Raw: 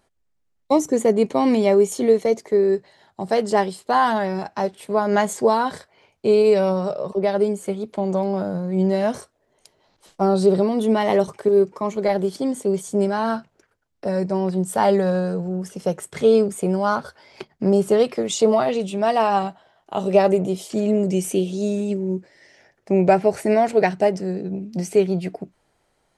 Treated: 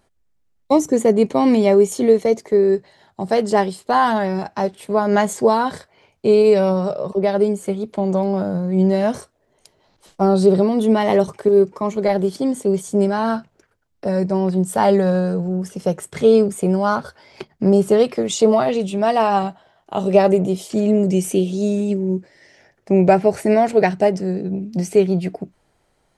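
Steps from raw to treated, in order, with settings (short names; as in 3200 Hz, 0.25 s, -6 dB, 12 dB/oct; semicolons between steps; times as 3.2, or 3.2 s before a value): low shelf 230 Hz +4.5 dB; gain +1.5 dB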